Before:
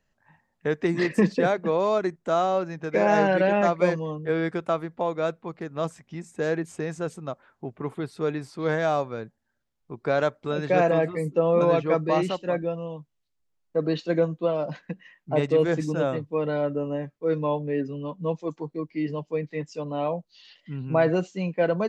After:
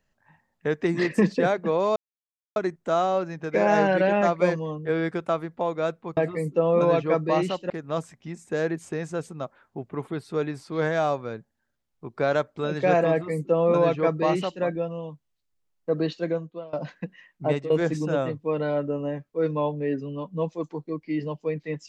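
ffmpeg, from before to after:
-filter_complex "[0:a]asplit=6[s0][s1][s2][s3][s4][s5];[s0]atrim=end=1.96,asetpts=PTS-STARTPTS,afade=t=out:st=1.956:d=0.004:c=hsin,apad=pad_dur=0.6[s6];[s1]atrim=start=1.96:end=5.572,asetpts=PTS-STARTPTS,afade=t=in:d=0.004:c=hsin[s7];[s2]atrim=start=10.968:end=12.502[s8];[s3]atrim=start=5.568:end=14.6,asetpts=PTS-STARTPTS,afade=t=out:st=8.312:d=0.72:silence=0.0794328[s9];[s4]atrim=start=14.6:end=15.57,asetpts=PTS-STARTPTS,afade=t=in:d=0.004:c=hsin:silence=0.0794328,afade=t=out:st=0.71:d=0.26:c=qsin:silence=0.133352[s10];[s5]atrim=start=15.57,asetpts=PTS-STARTPTS,afade=t=in:d=0.004:c=hsin:silence=0.133352[s11];[s6][s7]concat=n=2:v=0:a=1[s12];[s12][s8]acrossfade=d=0.004:c1=hsin:c2=hsin[s13];[s9][s10][s11]concat=n=3:v=0:a=1[s14];[s13][s14]acrossfade=d=0.004:c1=hsin:c2=hsin"

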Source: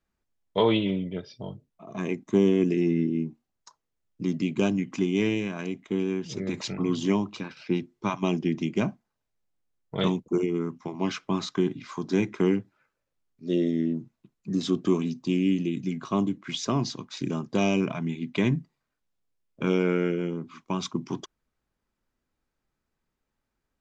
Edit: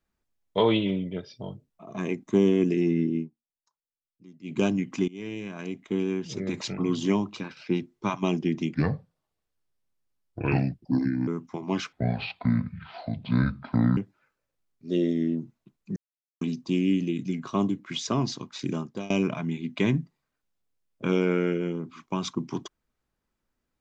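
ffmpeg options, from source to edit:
-filter_complex "[0:a]asplit=11[s0][s1][s2][s3][s4][s5][s6][s7][s8][s9][s10];[s0]atrim=end=3.3,asetpts=PTS-STARTPTS,afade=t=out:st=3.17:d=0.13:silence=0.0749894[s11];[s1]atrim=start=3.3:end=4.43,asetpts=PTS-STARTPTS,volume=0.075[s12];[s2]atrim=start=4.43:end=5.08,asetpts=PTS-STARTPTS,afade=t=in:d=0.13:silence=0.0749894,afade=t=out:st=0.646:d=0.004:c=hsin:silence=0.0707946[s13];[s3]atrim=start=5.08:end=8.744,asetpts=PTS-STARTPTS,afade=t=in:d=0.79:silence=0.0707946[s14];[s4]atrim=start=8.74:end=10.59,asetpts=PTS-STARTPTS,asetrate=32193,aresample=44100,atrim=end_sample=111760,asetpts=PTS-STARTPTS[s15];[s5]atrim=start=10.586:end=11.244[s16];[s6]atrim=start=11.24:end=12.55,asetpts=PTS-STARTPTS,asetrate=28224,aresample=44100,atrim=end_sample=90267,asetpts=PTS-STARTPTS[s17];[s7]atrim=start=12.546:end=14.54,asetpts=PTS-STARTPTS,afade=t=out:st=1.99:d=0.004:c=hsin[s18];[s8]atrim=start=14.54:end=14.99,asetpts=PTS-STARTPTS,volume=0[s19];[s9]atrim=start=14.99:end=17.68,asetpts=PTS-STARTPTS,afade=t=in:d=0.004:c=hsin,afade=t=out:st=2.33:d=0.36:silence=0.0707946[s20];[s10]atrim=start=17.68,asetpts=PTS-STARTPTS,afade=t=in:d=0.004:c=hsin:silence=0.0707946[s21];[s11][s12][s13][s14]concat=n=4:v=0:a=1[s22];[s22][s15]acrossfade=d=0.004:c1=hsin:c2=hsin[s23];[s23][s16]acrossfade=d=0.004:c1=hsin:c2=hsin[s24];[s24][s17]acrossfade=d=0.004:c1=hsin:c2=hsin[s25];[s18][s19][s20][s21]concat=n=4:v=0:a=1[s26];[s25][s26]acrossfade=d=0.004:c1=hsin:c2=hsin"

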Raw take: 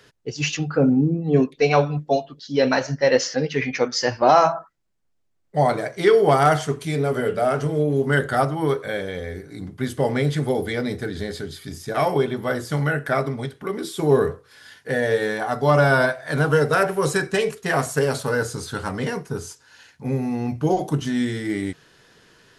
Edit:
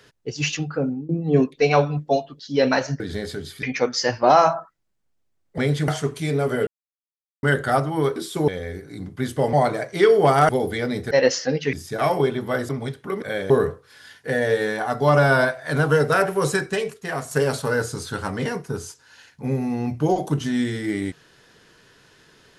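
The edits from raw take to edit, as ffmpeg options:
-filter_complex "[0:a]asplit=18[s0][s1][s2][s3][s4][s5][s6][s7][s8][s9][s10][s11][s12][s13][s14][s15][s16][s17];[s0]atrim=end=1.09,asetpts=PTS-STARTPTS,afade=t=out:st=0.52:d=0.57:silence=0.0668344[s18];[s1]atrim=start=1.09:end=3.002,asetpts=PTS-STARTPTS,afade=t=in:d=0.004:c=hsin:silence=0.0668344[s19];[s2]atrim=start=11.058:end=11.692[s20];[s3]atrim=start=3.618:end=5.572[s21];[s4]atrim=start=10.138:end=10.442[s22];[s5]atrim=start=6.528:end=7.32,asetpts=PTS-STARTPTS,afade=t=out:st=0.788:d=0.004:c=hsin[s23];[s6]atrim=start=7.32:end=8.08,asetpts=PTS-STARTPTS,volume=0[s24];[s7]atrim=start=8.08:end=8.812,asetpts=PTS-STARTPTS,afade=t=in:d=0.004:c=hsin[s25];[s8]atrim=start=13.788:end=14.112[s26];[s9]atrim=start=9.088:end=10.142[s27];[s10]atrim=start=5.568:end=6.532[s28];[s11]atrim=start=10.438:end=11.062[s29];[s12]atrim=start=2.998:end=3.622[s30];[s13]atrim=start=11.688:end=12.652[s31];[s14]atrim=start=13.258:end=13.792[s32];[s15]atrim=start=8.808:end=9.092[s33];[s16]atrim=start=14.108:end=17.92,asetpts=PTS-STARTPTS,afade=t=out:st=3.022:d=0.79:c=qua:silence=0.446684[s34];[s17]atrim=start=17.92,asetpts=PTS-STARTPTS,afade=t=in:d=0.004:c=hsin:silence=0.446684[s35];[s18][s19]concat=n=2:v=0:a=1[s36];[s36][s20]acrossfade=d=0.004:c1=hsin:c2=hsin[s37];[s37][s21]acrossfade=d=0.004:c1=hsin:c2=hsin[s38];[s38][s22]acrossfade=d=0.004:c1=hsin:c2=hsin[s39];[s23][s24][s25]concat=n=3:v=0:a=1[s40];[s39][s40]acrossfade=d=0.004:c1=hsin:c2=hsin[s41];[s41][s26]acrossfade=d=0.004:c1=hsin:c2=hsin[s42];[s42][s27]acrossfade=d=0.004:c1=hsin:c2=hsin[s43];[s43][s28]acrossfade=d=0.004:c1=hsin:c2=hsin[s44];[s44][s29]acrossfade=d=0.004:c1=hsin:c2=hsin[s45];[s45][s30]acrossfade=d=0.004:c1=hsin:c2=hsin[s46];[s46][s31]acrossfade=d=0.004:c1=hsin:c2=hsin[s47];[s47][s32]acrossfade=d=0.004:c1=hsin:c2=hsin[s48];[s48][s33]acrossfade=d=0.004:c1=hsin:c2=hsin[s49];[s34][s35]concat=n=2:v=0:a=1[s50];[s49][s50]acrossfade=d=0.004:c1=hsin:c2=hsin"

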